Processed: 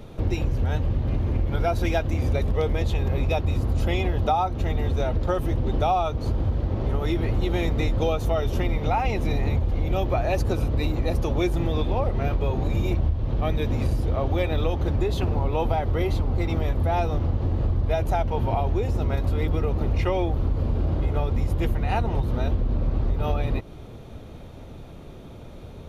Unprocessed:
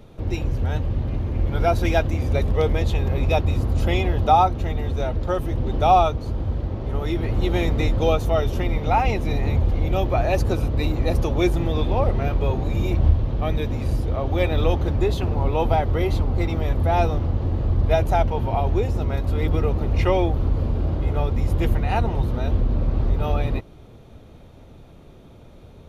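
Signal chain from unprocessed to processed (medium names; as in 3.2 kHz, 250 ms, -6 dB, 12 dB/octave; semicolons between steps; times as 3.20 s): compression, threshold -24 dBFS, peak gain reduction 13.5 dB; trim +4.5 dB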